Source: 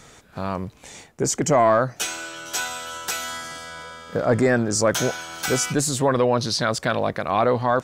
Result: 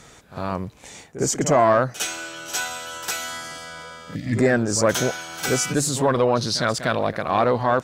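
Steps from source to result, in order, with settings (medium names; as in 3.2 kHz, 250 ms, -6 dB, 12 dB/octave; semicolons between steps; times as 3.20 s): Chebyshev shaper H 2 -19 dB, 8 -40 dB, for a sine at -7.5 dBFS; time-frequency box 4.15–4.37 s, 340–1700 Hz -28 dB; pre-echo 55 ms -12.5 dB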